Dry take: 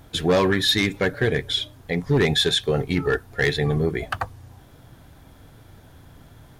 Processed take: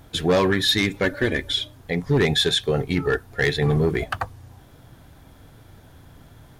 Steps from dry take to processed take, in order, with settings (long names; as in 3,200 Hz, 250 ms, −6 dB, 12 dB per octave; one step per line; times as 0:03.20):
0:01.04–0:01.52: comb filter 3.4 ms
0:03.62–0:04.04: leveller curve on the samples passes 1